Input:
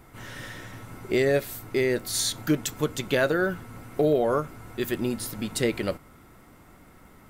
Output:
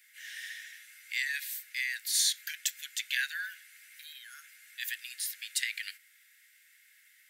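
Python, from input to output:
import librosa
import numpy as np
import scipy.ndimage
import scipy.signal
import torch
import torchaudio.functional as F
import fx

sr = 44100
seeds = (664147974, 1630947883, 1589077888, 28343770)

y = scipy.signal.sosfilt(scipy.signal.butter(16, 1600.0, 'highpass', fs=sr, output='sos'), x)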